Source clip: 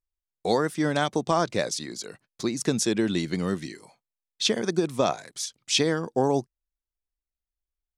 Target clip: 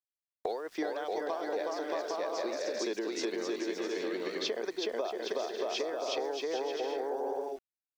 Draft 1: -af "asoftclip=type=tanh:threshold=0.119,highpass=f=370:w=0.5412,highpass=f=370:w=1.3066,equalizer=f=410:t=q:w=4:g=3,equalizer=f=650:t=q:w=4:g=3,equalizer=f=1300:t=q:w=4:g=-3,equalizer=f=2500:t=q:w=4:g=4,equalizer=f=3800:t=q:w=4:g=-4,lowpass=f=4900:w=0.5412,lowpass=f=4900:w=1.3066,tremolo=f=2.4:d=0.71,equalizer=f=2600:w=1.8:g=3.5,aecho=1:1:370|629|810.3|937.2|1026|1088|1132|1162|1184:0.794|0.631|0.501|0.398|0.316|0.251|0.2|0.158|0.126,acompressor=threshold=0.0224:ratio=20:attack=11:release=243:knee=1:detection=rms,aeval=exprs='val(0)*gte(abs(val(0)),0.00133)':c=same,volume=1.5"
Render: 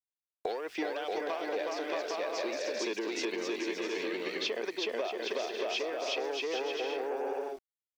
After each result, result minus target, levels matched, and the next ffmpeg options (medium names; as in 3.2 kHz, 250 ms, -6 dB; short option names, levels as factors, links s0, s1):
saturation: distortion +13 dB; 2 kHz band +4.0 dB
-af "asoftclip=type=tanh:threshold=0.355,highpass=f=370:w=0.5412,highpass=f=370:w=1.3066,equalizer=f=410:t=q:w=4:g=3,equalizer=f=650:t=q:w=4:g=3,equalizer=f=1300:t=q:w=4:g=-3,equalizer=f=2500:t=q:w=4:g=4,equalizer=f=3800:t=q:w=4:g=-4,lowpass=f=4900:w=0.5412,lowpass=f=4900:w=1.3066,tremolo=f=2.4:d=0.71,equalizer=f=2600:w=1.8:g=3.5,aecho=1:1:370|629|810.3|937.2|1026|1088|1132|1162|1184:0.794|0.631|0.501|0.398|0.316|0.251|0.2|0.158|0.126,acompressor=threshold=0.0224:ratio=20:attack=11:release=243:knee=1:detection=rms,aeval=exprs='val(0)*gte(abs(val(0)),0.00133)':c=same,volume=1.5"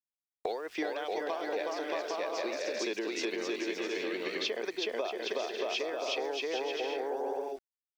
2 kHz band +4.0 dB
-af "asoftclip=type=tanh:threshold=0.355,highpass=f=370:w=0.5412,highpass=f=370:w=1.3066,equalizer=f=410:t=q:w=4:g=3,equalizer=f=650:t=q:w=4:g=3,equalizer=f=1300:t=q:w=4:g=-3,equalizer=f=2500:t=q:w=4:g=4,equalizer=f=3800:t=q:w=4:g=-4,lowpass=f=4900:w=0.5412,lowpass=f=4900:w=1.3066,tremolo=f=2.4:d=0.71,equalizer=f=2600:w=1.8:g=-6.5,aecho=1:1:370|629|810.3|937.2|1026|1088|1132|1162|1184:0.794|0.631|0.501|0.398|0.316|0.251|0.2|0.158|0.126,acompressor=threshold=0.0224:ratio=20:attack=11:release=243:knee=1:detection=rms,aeval=exprs='val(0)*gte(abs(val(0)),0.00133)':c=same,volume=1.5"